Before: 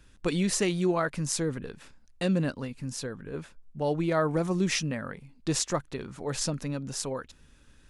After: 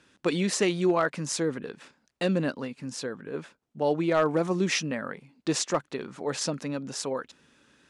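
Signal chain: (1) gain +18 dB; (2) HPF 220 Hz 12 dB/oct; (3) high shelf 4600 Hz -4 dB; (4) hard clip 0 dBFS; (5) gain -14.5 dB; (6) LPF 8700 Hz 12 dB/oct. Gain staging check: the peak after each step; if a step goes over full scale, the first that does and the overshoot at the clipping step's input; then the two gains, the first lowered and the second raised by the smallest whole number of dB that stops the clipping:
+7.5, +7.5, +5.0, 0.0, -14.5, -14.5 dBFS; step 1, 5.0 dB; step 1 +13 dB, step 5 -9.5 dB

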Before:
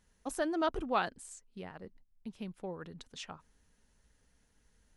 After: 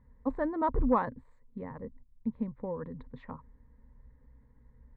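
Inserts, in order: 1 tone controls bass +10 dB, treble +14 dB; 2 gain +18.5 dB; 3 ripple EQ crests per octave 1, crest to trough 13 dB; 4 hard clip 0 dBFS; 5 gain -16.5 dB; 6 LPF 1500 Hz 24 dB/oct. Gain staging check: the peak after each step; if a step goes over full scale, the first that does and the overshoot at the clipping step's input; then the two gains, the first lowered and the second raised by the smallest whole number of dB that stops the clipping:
-15.5, +3.0, +5.0, 0.0, -16.5, -16.0 dBFS; step 2, 5.0 dB; step 2 +13.5 dB, step 5 -11.5 dB

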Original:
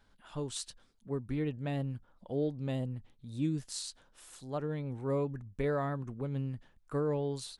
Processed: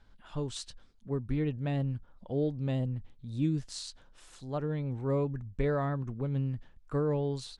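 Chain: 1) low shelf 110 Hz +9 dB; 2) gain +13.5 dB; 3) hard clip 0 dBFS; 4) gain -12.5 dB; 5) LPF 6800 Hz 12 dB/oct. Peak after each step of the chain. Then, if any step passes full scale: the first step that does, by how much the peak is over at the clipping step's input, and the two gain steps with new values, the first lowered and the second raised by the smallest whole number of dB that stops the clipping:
-17.0, -3.5, -3.5, -16.0, -16.0 dBFS; no overload

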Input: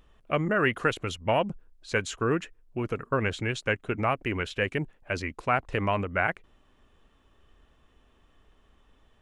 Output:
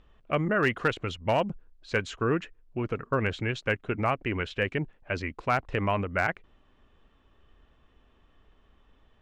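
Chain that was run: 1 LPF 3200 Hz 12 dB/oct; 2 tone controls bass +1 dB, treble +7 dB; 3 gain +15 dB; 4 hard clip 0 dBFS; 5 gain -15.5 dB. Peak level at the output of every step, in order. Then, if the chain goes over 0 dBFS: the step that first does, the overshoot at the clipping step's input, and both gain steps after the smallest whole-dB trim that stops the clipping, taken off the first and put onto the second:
-10.5, -10.5, +4.5, 0.0, -15.5 dBFS; step 3, 4.5 dB; step 3 +10 dB, step 5 -10.5 dB

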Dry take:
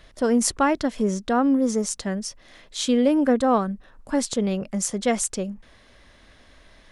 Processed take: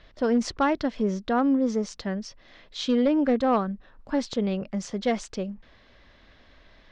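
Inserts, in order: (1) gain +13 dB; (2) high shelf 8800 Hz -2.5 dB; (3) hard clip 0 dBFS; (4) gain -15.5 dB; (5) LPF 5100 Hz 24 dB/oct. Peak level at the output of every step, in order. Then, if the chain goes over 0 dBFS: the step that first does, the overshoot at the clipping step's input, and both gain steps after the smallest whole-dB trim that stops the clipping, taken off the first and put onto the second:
+7.0, +5.5, 0.0, -15.5, -15.0 dBFS; step 1, 5.5 dB; step 1 +7 dB, step 4 -9.5 dB

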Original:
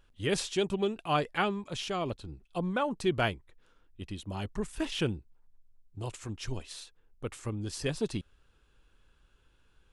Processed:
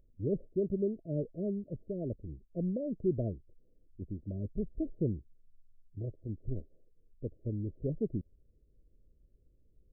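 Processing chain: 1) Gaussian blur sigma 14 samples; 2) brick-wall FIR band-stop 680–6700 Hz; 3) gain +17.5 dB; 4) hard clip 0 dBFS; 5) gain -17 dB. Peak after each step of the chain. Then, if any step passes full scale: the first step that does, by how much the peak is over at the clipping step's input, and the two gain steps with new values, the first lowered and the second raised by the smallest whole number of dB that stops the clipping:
-20.0, -20.0, -2.5, -2.5, -19.5 dBFS; no overload

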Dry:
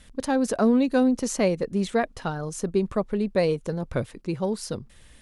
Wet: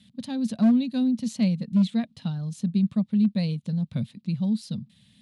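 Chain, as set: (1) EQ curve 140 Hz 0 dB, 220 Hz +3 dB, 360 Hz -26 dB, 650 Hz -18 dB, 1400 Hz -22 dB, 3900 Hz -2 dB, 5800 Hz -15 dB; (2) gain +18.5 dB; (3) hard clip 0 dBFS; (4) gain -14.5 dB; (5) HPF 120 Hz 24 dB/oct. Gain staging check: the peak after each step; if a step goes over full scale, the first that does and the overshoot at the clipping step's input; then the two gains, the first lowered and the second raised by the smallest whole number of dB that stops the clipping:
-13.5, +5.0, 0.0, -14.5, -11.5 dBFS; step 2, 5.0 dB; step 2 +13.5 dB, step 4 -9.5 dB

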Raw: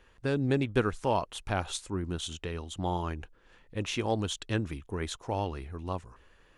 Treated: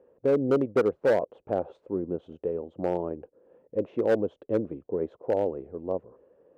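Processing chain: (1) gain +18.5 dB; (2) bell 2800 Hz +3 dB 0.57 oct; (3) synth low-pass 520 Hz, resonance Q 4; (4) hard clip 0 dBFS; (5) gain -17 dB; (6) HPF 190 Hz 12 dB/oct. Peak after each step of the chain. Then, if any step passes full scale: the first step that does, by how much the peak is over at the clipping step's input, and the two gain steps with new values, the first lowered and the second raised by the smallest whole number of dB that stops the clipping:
+6.0, +6.0, +9.5, 0.0, -17.0, -12.5 dBFS; step 1, 9.5 dB; step 1 +8.5 dB, step 5 -7 dB

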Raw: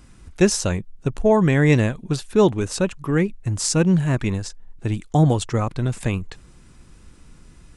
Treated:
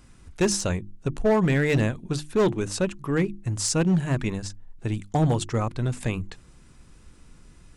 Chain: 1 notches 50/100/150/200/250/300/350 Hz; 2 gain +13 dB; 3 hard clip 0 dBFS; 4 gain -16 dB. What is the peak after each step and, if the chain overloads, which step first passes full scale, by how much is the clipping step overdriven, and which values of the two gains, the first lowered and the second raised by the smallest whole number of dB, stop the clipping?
-5.0, +8.0, 0.0, -16.0 dBFS; step 2, 8.0 dB; step 2 +5 dB, step 4 -8 dB

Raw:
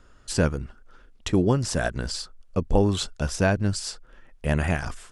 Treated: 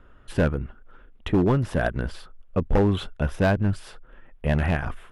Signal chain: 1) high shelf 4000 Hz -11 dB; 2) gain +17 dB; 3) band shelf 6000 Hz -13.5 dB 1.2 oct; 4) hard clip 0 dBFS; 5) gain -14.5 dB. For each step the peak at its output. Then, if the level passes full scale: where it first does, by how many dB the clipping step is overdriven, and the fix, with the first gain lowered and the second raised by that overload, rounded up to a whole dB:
-8.0, +9.0, +9.0, 0.0, -14.5 dBFS; step 2, 9.0 dB; step 2 +8 dB, step 5 -5.5 dB

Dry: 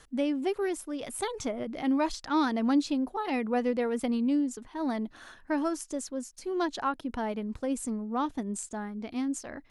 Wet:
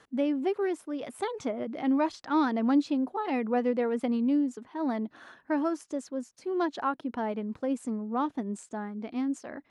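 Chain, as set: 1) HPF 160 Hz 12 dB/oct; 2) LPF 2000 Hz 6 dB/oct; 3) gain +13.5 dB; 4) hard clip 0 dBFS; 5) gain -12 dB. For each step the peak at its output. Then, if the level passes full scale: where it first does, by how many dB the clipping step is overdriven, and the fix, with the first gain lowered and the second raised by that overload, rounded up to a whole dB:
-17.0, -17.5, -4.0, -4.0, -16.0 dBFS; no overload

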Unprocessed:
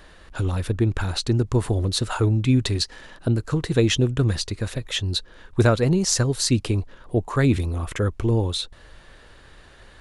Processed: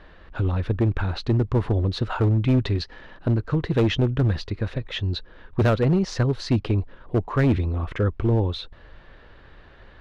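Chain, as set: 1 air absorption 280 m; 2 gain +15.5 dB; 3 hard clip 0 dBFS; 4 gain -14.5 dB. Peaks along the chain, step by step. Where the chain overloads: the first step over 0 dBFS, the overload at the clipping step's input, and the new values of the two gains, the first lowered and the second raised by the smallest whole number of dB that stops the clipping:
-7.0, +8.5, 0.0, -14.5 dBFS; step 2, 8.5 dB; step 2 +6.5 dB, step 4 -5.5 dB

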